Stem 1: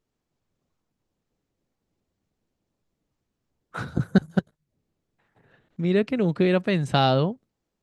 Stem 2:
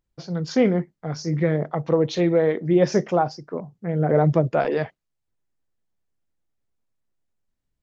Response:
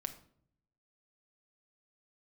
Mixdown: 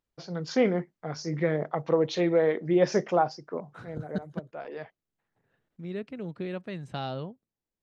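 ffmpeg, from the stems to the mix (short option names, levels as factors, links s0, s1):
-filter_complex "[0:a]volume=0.2,asplit=2[s0][s1];[1:a]lowshelf=f=250:g=-10,volume=0.841[s2];[s1]apad=whole_len=345241[s3];[s2][s3]sidechaincompress=threshold=0.00282:ratio=6:attack=41:release=664[s4];[s0][s4]amix=inputs=2:normalize=0,highshelf=f=7100:g=-7"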